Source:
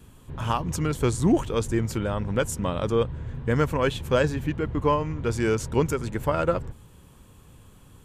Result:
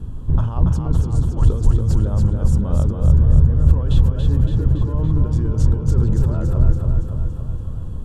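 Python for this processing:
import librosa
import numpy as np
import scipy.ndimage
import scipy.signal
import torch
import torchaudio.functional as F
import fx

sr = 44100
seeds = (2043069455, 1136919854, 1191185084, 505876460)

y = fx.peak_eq(x, sr, hz=2200.0, db=-14.0, octaves=0.57)
y = fx.over_compress(y, sr, threshold_db=-33.0, ratio=-1.0)
y = fx.riaa(y, sr, side='playback')
y = fx.echo_feedback(y, sr, ms=282, feedback_pct=59, wet_db=-4.0)
y = y * librosa.db_to_amplitude(1.0)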